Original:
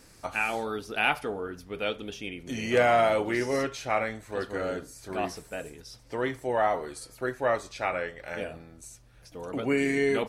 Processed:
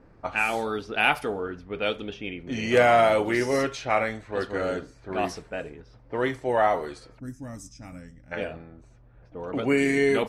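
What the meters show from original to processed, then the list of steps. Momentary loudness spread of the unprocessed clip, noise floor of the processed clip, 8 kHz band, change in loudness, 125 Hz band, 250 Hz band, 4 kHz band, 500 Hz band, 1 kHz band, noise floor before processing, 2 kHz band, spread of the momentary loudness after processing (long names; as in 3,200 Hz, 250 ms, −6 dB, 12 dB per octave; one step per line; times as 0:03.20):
15 LU, −54 dBFS, +0.5 dB, +3.5 dB, +3.5 dB, +3.5 dB, +3.0 dB, +3.0 dB, +3.0 dB, −55 dBFS, +3.0 dB, 20 LU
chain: low-pass that shuts in the quiet parts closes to 1,000 Hz, open at −25.5 dBFS
gain on a spectral selection 0:07.19–0:08.32, 320–4,900 Hz −23 dB
level +3.5 dB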